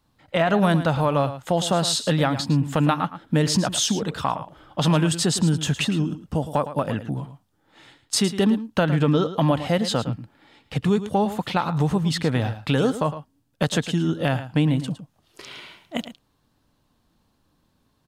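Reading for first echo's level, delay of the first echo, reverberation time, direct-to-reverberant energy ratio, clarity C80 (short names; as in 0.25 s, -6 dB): -12.5 dB, 0.11 s, none, none, none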